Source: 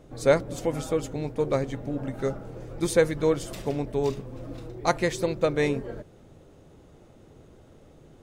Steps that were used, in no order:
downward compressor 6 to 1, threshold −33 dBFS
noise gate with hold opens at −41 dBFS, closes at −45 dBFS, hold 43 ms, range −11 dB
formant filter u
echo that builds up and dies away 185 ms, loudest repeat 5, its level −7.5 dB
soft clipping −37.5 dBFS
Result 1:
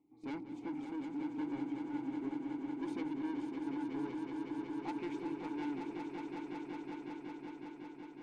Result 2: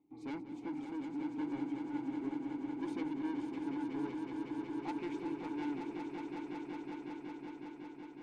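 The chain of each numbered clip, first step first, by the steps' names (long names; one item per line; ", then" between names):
formant filter, then noise gate with hold, then soft clipping, then echo that builds up and dies away, then downward compressor
noise gate with hold, then formant filter, then soft clipping, then downward compressor, then echo that builds up and dies away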